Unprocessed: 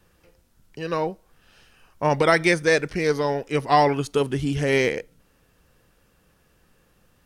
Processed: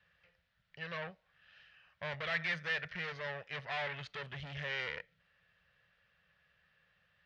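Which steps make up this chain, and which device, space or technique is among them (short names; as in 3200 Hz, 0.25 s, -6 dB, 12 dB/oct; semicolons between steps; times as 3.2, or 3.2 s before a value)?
scooped metal amplifier (tube stage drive 27 dB, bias 0.55; speaker cabinet 95–3600 Hz, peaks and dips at 170 Hz +7 dB, 590 Hz +7 dB, 940 Hz -4 dB, 1800 Hz +8 dB; passive tone stack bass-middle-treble 10-0-10)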